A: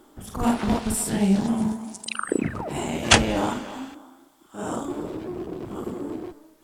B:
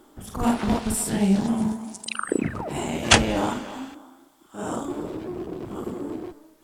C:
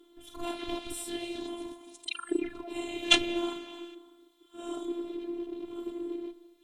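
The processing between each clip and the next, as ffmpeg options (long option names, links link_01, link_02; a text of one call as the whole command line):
ffmpeg -i in.wav -af anull out.wav
ffmpeg -i in.wav -af "superequalizer=6b=2.51:12b=2.51:13b=3.98,afftfilt=real='hypot(re,im)*cos(PI*b)':imag='0':win_size=512:overlap=0.75,volume=-9.5dB" out.wav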